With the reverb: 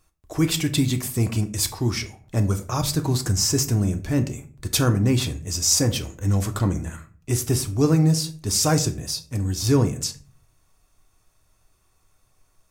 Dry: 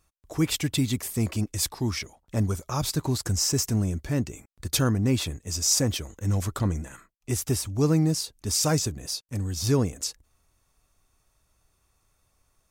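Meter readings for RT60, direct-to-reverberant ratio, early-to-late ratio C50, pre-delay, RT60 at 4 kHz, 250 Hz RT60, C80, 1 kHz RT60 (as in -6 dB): 0.45 s, 7.0 dB, 15.0 dB, 3 ms, 0.30 s, 0.60 s, 19.0 dB, 0.40 s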